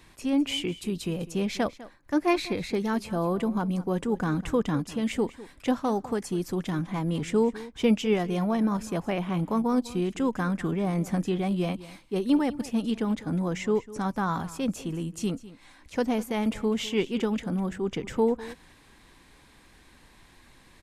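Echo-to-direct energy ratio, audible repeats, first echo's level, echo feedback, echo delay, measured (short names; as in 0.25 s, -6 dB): -17.5 dB, 1, -17.5 dB, no steady repeat, 0.201 s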